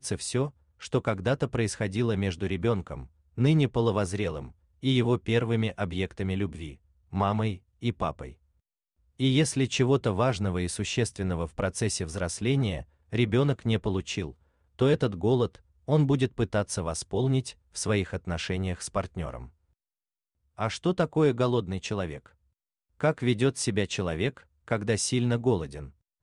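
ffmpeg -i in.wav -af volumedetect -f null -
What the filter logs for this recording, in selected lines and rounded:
mean_volume: -28.3 dB
max_volume: -11.6 dB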